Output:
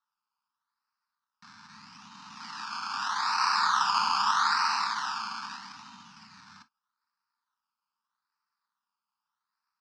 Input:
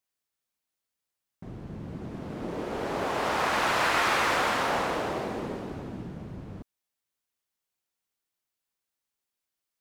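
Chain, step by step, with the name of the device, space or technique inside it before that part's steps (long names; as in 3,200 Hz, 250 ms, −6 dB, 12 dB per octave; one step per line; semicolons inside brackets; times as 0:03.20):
circuit-bent sampling toy (sample-and-hold swept by an LFO 18×, swing 60% 0.8 Hz; loudspeaker in its box 590–5,700 Hz, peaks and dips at 600 Hz −5 dB, 860 Hz +5 dB, 1,300 Hz +6 dB, 2,100 Hz −8 dB, 3,300 Hz −7 dB, 5,000 Hz +9 dB)
0:03.24–0:03.76: notch filter 2,000 Hz, Q 12
elliptic band-stop filter 230–960 Hz, stop band 50 dB
low-shelf EQ 140 Hz +4 dB
reverb whose tail is shaped and stops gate 80 ms falling, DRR 9.5 dB
level +1 dB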